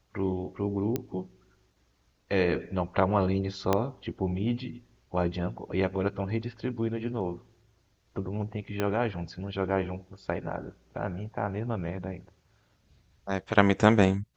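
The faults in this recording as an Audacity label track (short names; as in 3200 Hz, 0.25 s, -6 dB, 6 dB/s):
0.960000	0.960000	pop -15 dBFS
3.730000	3.730000	pop -10 dBFS
8.800000	8.800000	pop -14 dBFS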